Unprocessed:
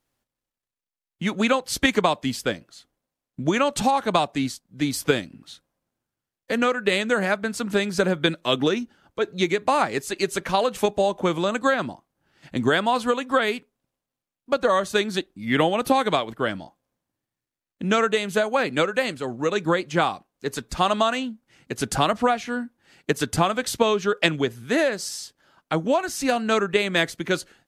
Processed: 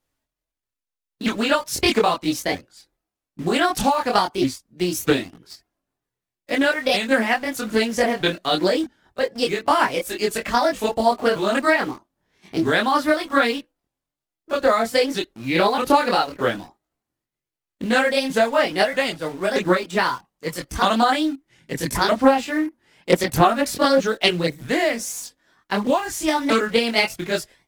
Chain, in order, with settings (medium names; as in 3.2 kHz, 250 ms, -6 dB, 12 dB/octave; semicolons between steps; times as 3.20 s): sawtooth pitch modulation +5 st, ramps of 631 ms; in parallel at -6.5 dB: bit crusher 6-bit; on the sum: chorus voices 6, 0.36 Hz, delay 24 ms, depth 2.1 ms; loudspeaker Doppler distortion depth 0.23 ms; trim +3 dB